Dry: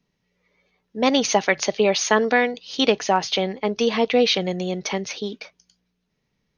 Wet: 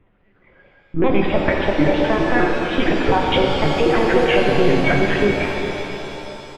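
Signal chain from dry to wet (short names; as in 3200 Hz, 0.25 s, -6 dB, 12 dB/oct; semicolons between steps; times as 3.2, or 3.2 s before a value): trilling pitch shifter -5.5 st, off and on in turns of 0.104 s; Bessel low-pass 1800 Hz, order 4; reverb removal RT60 1.1 s; HPF 72 Hz 24 dB/oct; low shelf 140 Hz -6 dB; compressor 16:1, threshold -29 dBFS, peak gain reduction 17 dB; frequency-shifting echo 0.176 s, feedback 30%, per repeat -82 Hz, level -19 dB; LPC vocoder at 8 kHz pitch kept; maximiser +23.5 dB; shimmer reverb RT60 3.4 s, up +7 st, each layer -8 dB, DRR -0.5 dB; gain -6.5 dB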